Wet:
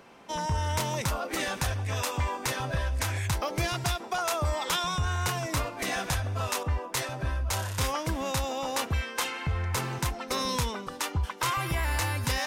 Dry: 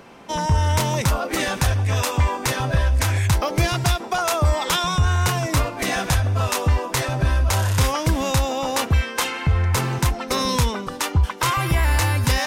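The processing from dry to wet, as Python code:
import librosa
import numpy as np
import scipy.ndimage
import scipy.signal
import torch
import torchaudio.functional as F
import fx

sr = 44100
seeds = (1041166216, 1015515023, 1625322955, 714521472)

y = fx.low_shelf(x, sr, hz=290.0, db=-4.5)
y = fx.band_widen(y, sr, depth_pct=70, at=(6.63, 8.44))
y = y * librosa.db_to_amplitude(-7.0)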